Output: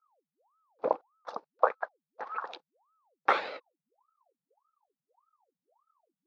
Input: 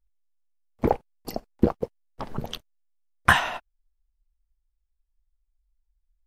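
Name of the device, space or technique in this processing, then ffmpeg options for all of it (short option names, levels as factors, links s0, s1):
voice changer toy: -af "aeval=exprs='val(0)*sin(2*PI*730*n/s+730*0.8/1.7*sin(2*PI*1.7*n/s))':c=same,highpass=500,equalizer=f=500:t=q:w=4:g=10,equalizer=f=840:t=q:w=4:g=7,equalizer=f=1300:t=q:w=4:g=3,equalizer=f=2000:t=q:w=4:g=-6,equalizer=f=3000:t=q:w=4:g=-7,lowpass=f=4600:w=0.5412,lowpass=f=4600:w=1.3066,volume=0.562"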